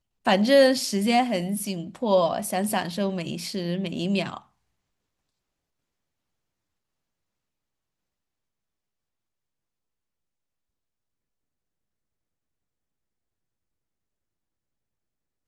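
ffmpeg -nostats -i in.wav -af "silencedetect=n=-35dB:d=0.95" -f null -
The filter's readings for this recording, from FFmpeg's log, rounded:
silence_start: 4.38
silence_end: 15.47 | silence_duration: 11.10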